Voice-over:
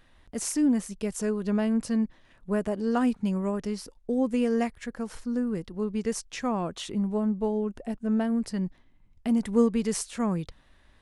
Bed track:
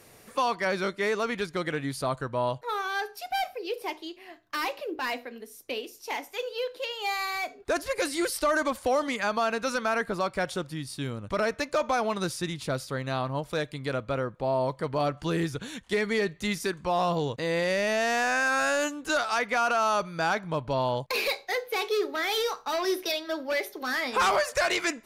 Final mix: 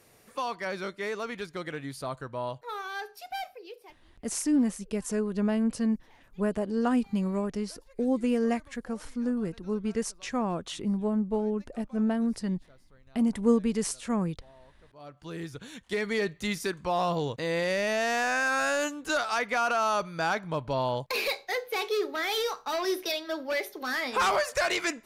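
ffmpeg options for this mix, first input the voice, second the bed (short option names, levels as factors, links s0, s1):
-filter_complex "[0:a]adelay=3900,volume=0.891[s0];[1:a]volume=12.6,afade=t=out:st=3.32:d=0.68:silence=0.0668344,afade=t=in:st=14.93:d=1.3:silence=0.0398107[s1];[s0][s1]amix=inputs=2:normalize=0"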